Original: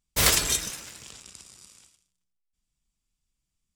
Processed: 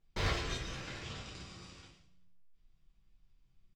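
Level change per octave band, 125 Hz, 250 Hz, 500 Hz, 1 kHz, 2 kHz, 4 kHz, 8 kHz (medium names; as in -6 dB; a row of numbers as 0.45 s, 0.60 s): -3.5 dB, -5.5 dB, -7.0 dB, -8.0 dB, -10.0 dB, -13.5 dB, -24.5 dB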